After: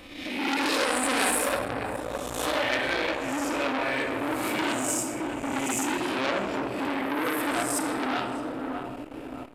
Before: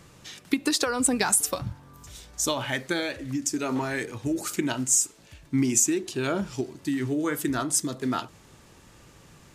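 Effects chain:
peak hold with a rise ahead of every peak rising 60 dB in 0.88 s
on a send: feedback echo with a low-pass in the loop 614 ms, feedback 54%, low-pass 1,200 Hz, level −9 dB
on the sum: tape wow and flutter 15 cents
graphic EQ with 15 bands 160 Hz −11 dB, 630 Hz +9 dB, 2,500 Hz +8 dB, 6,300 Hz −12 dB
in parallel at −1 dB: downward compressor, threshold −29 dBFS, peak gain reduction 14.5 dB
0:06.94–0:07.43: on the sum: low-shelf EQ 120 Hz −11 dB
rectangular room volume 1,900 cubic metres, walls mixed, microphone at 2 metres
saturating transformer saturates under 3,200 Hz
level −5.5 dB

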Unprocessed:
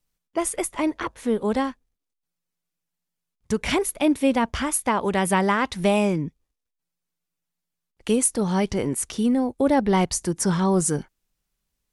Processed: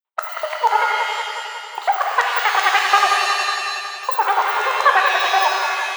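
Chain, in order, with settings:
spectral magnitudes quantised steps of 15 dB
elliptic band-stop filter 1,800–9,900 Hz
parametric band 2,500 Hz −7 dB 0.66 octaves
in parallel at −8 dB: centre clipping without the shift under −33.5 dBFS
on the sum: auto-filter high-pass square 5.2 Hz 460–3,200 Hz
feedback echo with a low-pass in the loop 365 ms, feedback 67%, low-pass 3,400 Hz, level −6.5 dB
wrong playback speed 7.5 ips tape played at 15 ips
linear-phase brick-wall high-pass 350 Hz
reverb with rising layers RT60 1.5 s, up +7 semitones, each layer −2 dB, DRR 3.5 dB
level +1 dB

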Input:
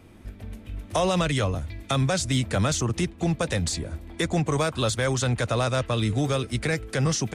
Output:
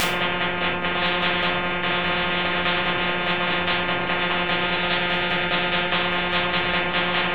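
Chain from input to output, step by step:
linear delta modulator 16 kbit/s, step −24.5 dBFS
square-wave tremolo 4.9 Hz, depth 65%, duty 20%
phases set to zero 177 Hz
0:04.31–0:05.93: Butterworth band-reject 1,100 Hz, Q 4.2
rectangular room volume 740 cubic metres, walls furnished, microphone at 6.1 metres
every bin compressed towards the loudest bin 10 to 1

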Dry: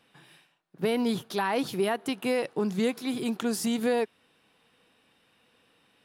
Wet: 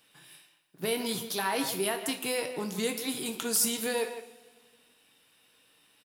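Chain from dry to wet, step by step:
first-order pre-emphasis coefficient 0.8
far-end echo of a speakerphone 160 ms, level −10 dB
coupled-rooms reverb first 0.38 s, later 1.8 s, from −16 dB, DRR 5 dB
level +8 dB

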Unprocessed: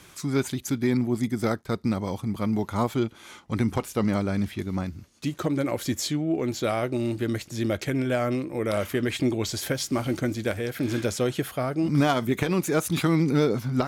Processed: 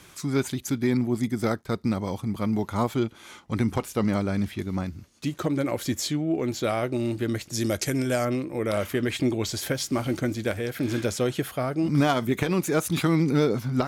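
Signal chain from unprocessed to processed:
0:07.53–0:08.25: flat-topped bell 7,700 Hz +11.5 dB

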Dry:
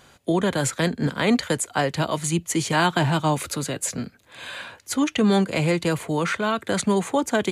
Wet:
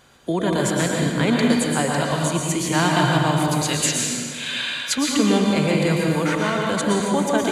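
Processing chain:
0:03.61–0:04.98: meter weighting curve D
convolution reverb RT60 1.7 s, pre-delay 106 ms, DRR −1.5 dB
level −1.5 dB

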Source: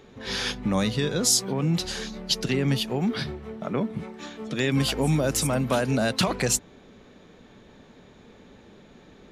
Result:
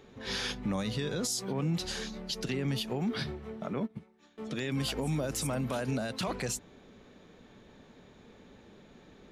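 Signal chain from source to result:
brickwall limiter −19.5 dBFS, peak gain reduction 10.5 dB
0:03.78–0:04.38: expander for the loud parts 2.5 to 1, over −38 dBFS
level −4.5 dB

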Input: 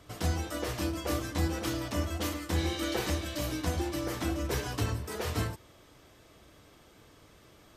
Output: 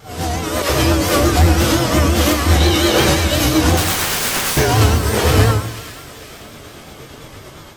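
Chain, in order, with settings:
random phases in long frames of 200 ms
0:00.62–0:01.37: all-pass dispersion lows, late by 71 ms, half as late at 1,400 Hz
0:03.77–0:04.57: wrap-around overflow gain 34.5 dB
amplitude tremolo 8.7 Hz, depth 37%
sine wavefolder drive 9 dB, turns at −15.5 dBFS
on a send: delay with a high-pass on its return 480 ms, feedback 48%, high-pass 1,700 Hz, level −13.5 dB
on the sum: automatic gain control gain up to 8 dB
dense smooth reverb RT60 0.99 s, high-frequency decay 0.8×, DRR 4 dB
pitch vibrato 5.7 Hz 71 cents

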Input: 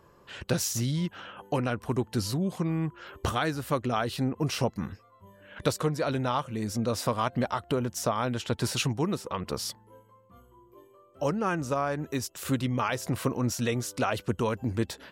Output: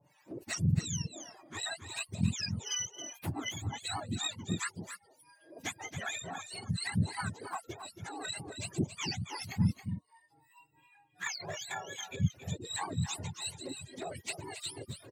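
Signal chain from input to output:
frequency axis turned over on the octave scale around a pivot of 980 Hz
reverb reduction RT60 0.51 s
in parallel at −2.5 dB: downward compressor 6 to 1, threshold −35 dBFS, peak gain reduction 16 dB
on the sum: two-band tremolo in antiphase 2.7 Hz, depth 100%, crossover 700 Hz
flanger swept by the level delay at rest 7.1 ms, full sweep at −24.5 dBFS
on a send: single-tap delay 274 ms −9.5 dB
on the sum: level −2 dB

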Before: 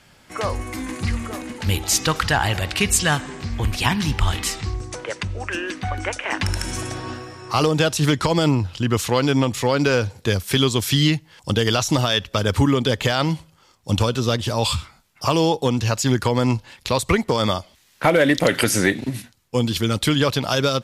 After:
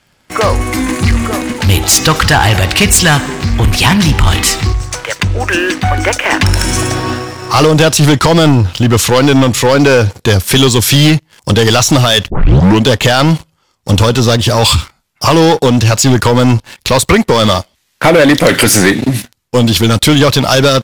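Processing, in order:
leveller curve on the samples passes 3
0:04.72–0:05.20: parametric band 320 Hz −13.5 dB 1.8 octaves
0:12.30: tape start 0.55 s
level +3.5 dB

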